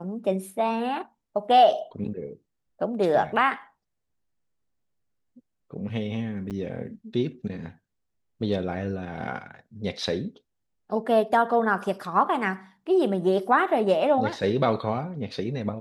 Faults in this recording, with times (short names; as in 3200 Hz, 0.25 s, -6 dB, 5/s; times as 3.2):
6.5–6.51 gap 8.2 ms